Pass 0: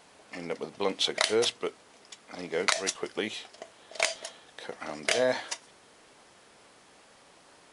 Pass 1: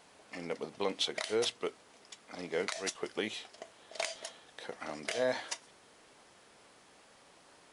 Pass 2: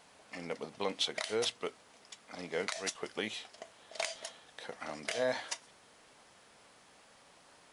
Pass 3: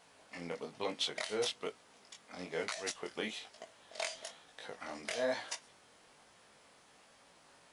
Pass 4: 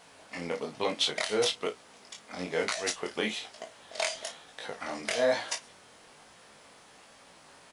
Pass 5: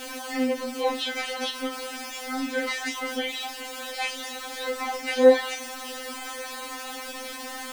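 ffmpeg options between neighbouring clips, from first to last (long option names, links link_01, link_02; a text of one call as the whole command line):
ffmpeg -i in.wav -af "alimiter=limit=-17dB:level=0:latency=1:release=146,volume=-3.5dB" out.wav
ffmpeg -i in.wav -af "equalizer=frequency=360:width=2.1:gain=-4.5" out.wav
ffmpeg -i in.wav -af "flanger=delay=17.5:depth=6.1:speed=1.1,volume=1dB" out.wav
ffmpeg -i in.wav -filter_complex "[0:a]asplit=2[link_01][link_02];[link_02]adelay=33,volume=-11dB[link_03];[link_01][link_03]amix=inputs=2:normalize=0,volume=7.5dB" out.wav
ffmpeg -i in.wav -filter_complex "[0:a]aeval=exprs='val(0)+0.5*0.0188*sgn(val(0))':channel_layout=same,acrossover=split=2900[link_01][link_02];[link_02]acompressor=threshold=-39dB:ratio=4:attack=1:release=60[link_03];[link_01][link_03]amix=inputs=2:normalize=0,afftfilt=real='re*3.46*eq(mod(b,12),0)':imag='im*3.46*eq(mod(b,12),0)':win_size=2048:overlap=0.75,volume=6dB" out.wav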